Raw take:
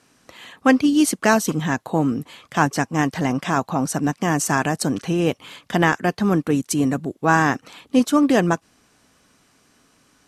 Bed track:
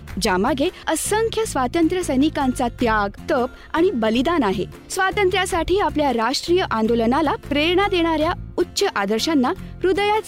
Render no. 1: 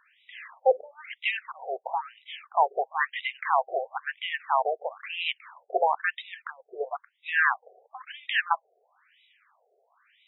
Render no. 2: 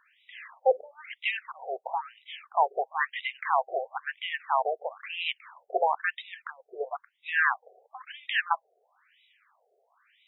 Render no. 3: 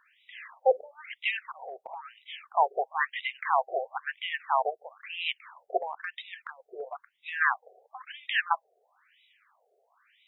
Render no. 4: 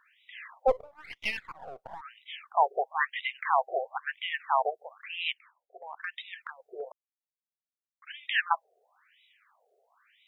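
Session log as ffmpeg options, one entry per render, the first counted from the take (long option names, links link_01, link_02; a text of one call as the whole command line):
ffmpeg -i in.wav -af "crystalizer=i=3:c=0,afftfilt=real='re*between(b*sr/1024,530*pow(2800/530,0.5+0.5*sin(2*PI*1*pts/sr))/1.41,530*pow(2800/530,0.5+0.5*sin(2*PI*1*pts/sr))*1.41)':imag='im*between(b*sr/1024,530*pow(2800/530,0.5+0.5*sin(2*PI*1*pts/sr))/1.41,530*pow(2800/530,0.5+0.5*sin(2*PI*1*pts/sr))*1.41)':win_size=1024:overlap=0.75" out.wav
ffmpeg -i in.wav -af "volume=-1.5dB" out.wav
ffmpeg -i in.wav -filter_complex "[0:a]asplit=3[link_01][link_02][link_03];[link_01]afade=type=out:start_time=1.67:duration=0.02[link_04];[link_02]acompressor=threshold=-36dB:ratio=10:attack=3.2:release=140:knee=1:detection=peak,afade=type=in:start_time=1.67:duration=0.02,afade=type=out:start_time=2.19:duration=0.02[link_05];[link_03]afade=type=in:start_time=2.19:duration=0.02[link_06];[link_04][link_05][link_06]amix=inputs=3:normalize=0,asplit=3[link_07][link_08][link_09];[link_07]afade=type=out:start_time=4.69:duration=0.02[link_10];[link_08]equalizer=frequency=560:width=0.54:gain=-11.5,afade=type=in:start_time=4.69:duration=0.02,afade=type=out:start_time=5.22:duration=0.02[link_11];[link_09]afade=type=in:start_time=5.22:duration=0.02[link_12];[link_10][link_11][link_12]amix=inputs=3:normalize=0,asplit=3[link_13][link_14][link_15];[link_13]afade=type=out:start_time=5.77:duration=0.02[link_16];[link_14]acompressor=threshold=-33dB:ratio=4:attack=3.2:release=140:knee=1:detection=peak,afade=type=in:start_time=5.77:duration=0.02,afade=type=out:start_time=7.4:duration=0.02[link_17];[link_15]afade=type=in:start_time=7.4:duration=0.02[link_18];[link_16][link_17][link_18]amix=inputs=3:normalize=0" out.wav
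ffmpeg -i in.wav -filter_complex "[0:a]asplit=3[link_01][link_02][link_03];[link_01]afade=type=out:start_time=0.67:duration=0.02[link_04];[link_02]aeval=exprs='if(lt(val(0),0),0.447*val(0),val(0))':channel_layout=same,afade=type=in:start_time=0.67:duration=0.02,afade=type=out:start_time=2:duration=0.02[link_05];[link_03]afade=type=in:start_time=2:duration=0.02[link_06];[link_04][link_05][link_06]amix=inputs=3:normalize=0,asplit=5[link_07][link_08][link_09][link_10][link_11];[link_07]atrim=end=5.53,asetpts=PTS-STARTPTS,afade=type=out:start_time=5.27:duration=0.26:silence=0.0749894[link_12];[link_08]atrim=start=5.53:end=5.77,asetpts=PTS-STARTPTS,volume=-22.5dB[link_13];[link_09]atrim=start=5.77:end=6.92,asetpts=PTS-STARTPTS,afade=type=in:duration=0.26:silence=0.0749894,afade=type=out:start_time=1.146:duration=0.004:curve=hsin[link_14];[link_10]atrim=start=6.92:end=8.02,asetpts=PTS-STARTPTS,volume=0[link_15];[link_11]atrim=start=8.02,asetpts=PTS-STARTPTS,afade=type=in:duration=0.004:curve=hsin[link_16];[link_12][link_13][link_14][link_15][link_16]concat=n=5:v=0:a=1" out.wav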